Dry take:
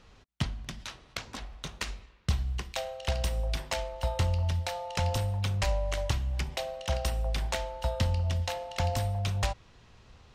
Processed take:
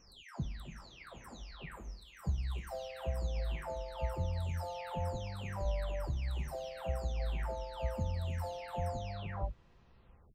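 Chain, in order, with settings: spectral delay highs early, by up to 0.57 s; bell 7700 Hz -10.5 dB 3 oct; gain -4.5 dB

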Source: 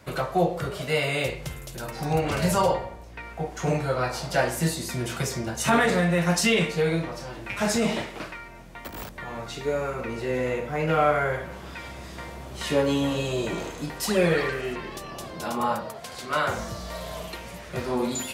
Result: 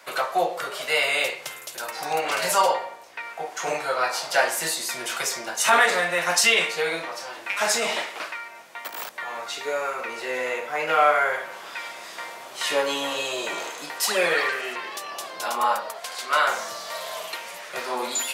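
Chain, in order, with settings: HPF 740 Hz 12 dB/oct; gain +6 dB

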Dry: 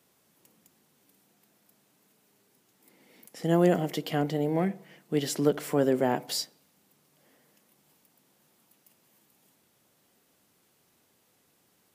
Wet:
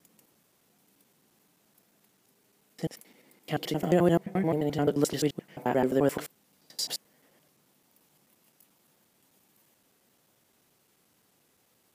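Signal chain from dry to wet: slices in reverse order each 87 ms, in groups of 8

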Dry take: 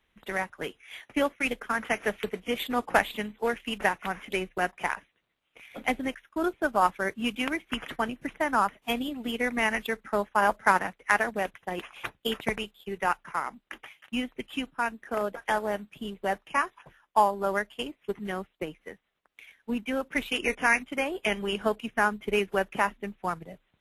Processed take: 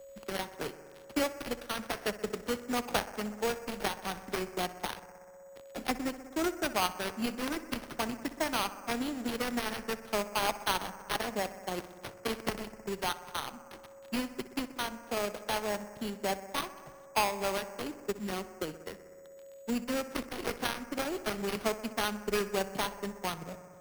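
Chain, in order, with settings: switching dead time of 0.28 ms; whine 7900 Hz -55 dBFS; on a send: analogue delay 62 ms, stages 1024, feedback 74%, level -15 dB; on the sum: careless resampling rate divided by 6×, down none, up hold; three-band squash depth 40%; gain -2.5 dB

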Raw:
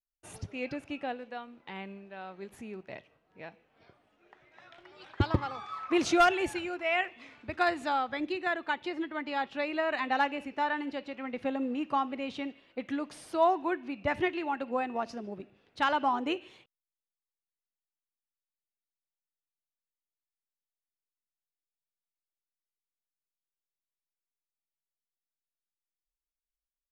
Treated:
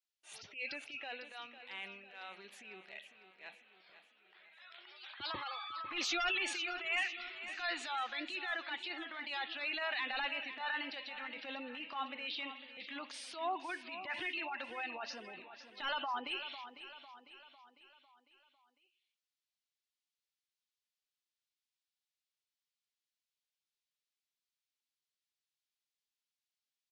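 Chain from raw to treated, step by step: band-pass 3700 Hz, Q 1.2; soft clip -36.5 dBFS, distortion -9 dB; spectral gate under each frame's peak -20 dB strong; transient shaper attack -11 dB, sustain +4 dB; feedback echo 0.501 s, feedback 50%, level -12 dB; gain +7.5 dB

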